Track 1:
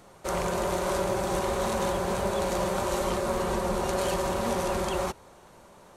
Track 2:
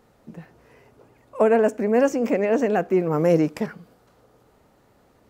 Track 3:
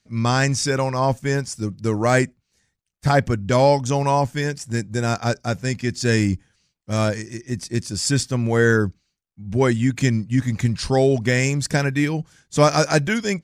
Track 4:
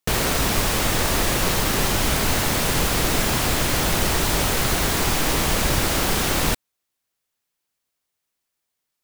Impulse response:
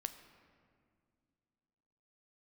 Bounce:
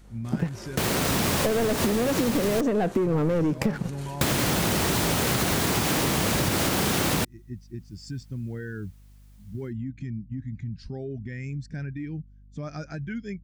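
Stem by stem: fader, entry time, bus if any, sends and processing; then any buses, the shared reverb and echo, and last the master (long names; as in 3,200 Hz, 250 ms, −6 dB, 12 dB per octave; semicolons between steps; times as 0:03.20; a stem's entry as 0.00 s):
−3.5 dB, 0.00 s, bus A, no send, automatic ducking −6 dB, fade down 0.30 s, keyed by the third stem
+1.0 dB, 0.05 s, bus B, no send, leveller curve on the samples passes 3
−7.0 dB, 0.00 s, bus A, no send, Bessel low-pass filter 5,000 Hz; mains hum 50 Hz, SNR 15 dB; every bin expanded away from the loudest bin 1.5 to 1
−3.0 dB, 0.70 s, muted 0:02.61–0:04.21, bus B, no send, high-pass filter 140 Hz 12 dB per octave; automatic gain control gain up to 16 dB
bus A: 0.0 dB, flat-topped bell 730 Hz −9 dB; brickwall limiter −26 dBFS, peak gain reduction 12.5 dB
bus B: 0.0 dB, low-shelf EQ 240 Hz +10.5 dB; downward compressor, threshold −13 dBFS, peak gain reduction 10 dB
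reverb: not used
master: downward compressor, threshold −21 dBFS, peak gain reduction 9.5 dB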